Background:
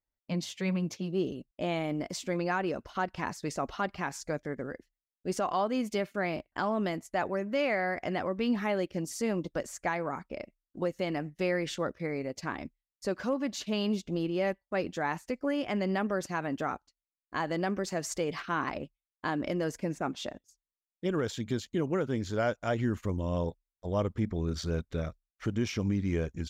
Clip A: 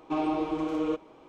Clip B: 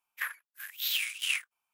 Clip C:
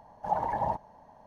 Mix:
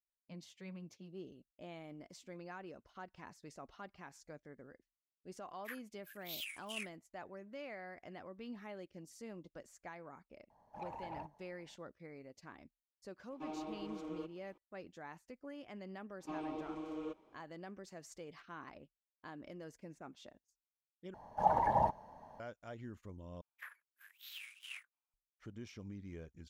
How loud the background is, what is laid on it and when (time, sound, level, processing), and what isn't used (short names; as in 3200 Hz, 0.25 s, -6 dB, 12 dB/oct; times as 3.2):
background -18.5 dB
5.47 add B -13.5 dB + reverb removal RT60 1.9 s
10.5 add C -15 dB + soft clip -25 dBFS
13.3 add A -16 dB
16.17 add A -14.5 dB, fades 0.05 s
21.14 replace with C -1 dB
23.41 replace with B -12.5 dB + high shelf 2400 Hz -11 dB